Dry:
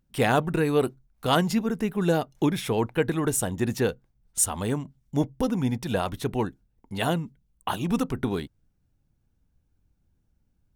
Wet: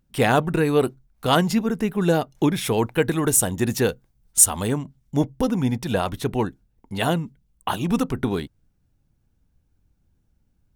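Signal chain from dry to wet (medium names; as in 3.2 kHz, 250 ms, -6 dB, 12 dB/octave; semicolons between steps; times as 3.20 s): 2.61–4.68 s: treble shelf 4.8 kHz +7 dB; trim +3.5 dB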